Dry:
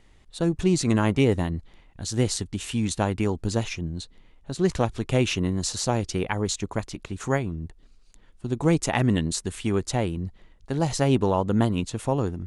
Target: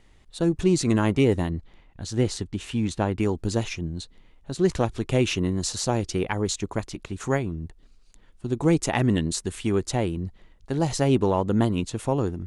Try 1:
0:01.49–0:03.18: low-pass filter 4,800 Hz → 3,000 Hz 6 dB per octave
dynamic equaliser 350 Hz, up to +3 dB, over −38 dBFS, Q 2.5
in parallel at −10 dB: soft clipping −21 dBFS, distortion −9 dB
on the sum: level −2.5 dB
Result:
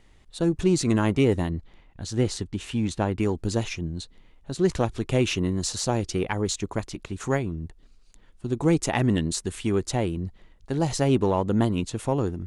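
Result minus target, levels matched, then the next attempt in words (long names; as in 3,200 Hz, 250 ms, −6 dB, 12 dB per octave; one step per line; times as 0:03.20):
soft clipping: distortion +7 dB
0:01.49–0:03.18: low-pass filter 4,800 Hz → 3,000 Hz 6 dB per octave
dynamic equaliser 350 Hz, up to +3 dB, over −38 dBFS, Q 2.5
in parallel at −10 dB: soft clipping −14 dBFS, distortion −16 dB
on the sum: level −2.5 dB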